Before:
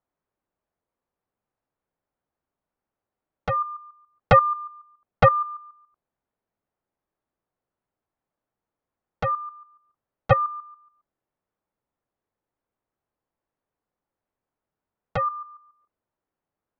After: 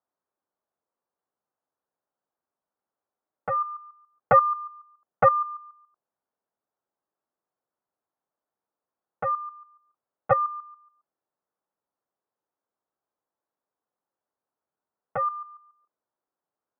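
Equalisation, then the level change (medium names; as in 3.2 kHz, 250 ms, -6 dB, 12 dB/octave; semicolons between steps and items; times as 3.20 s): high-pass 480 Hz 6 dB/octave; low-pass 1.6 kHz 24 dB/octave; 0.0 dB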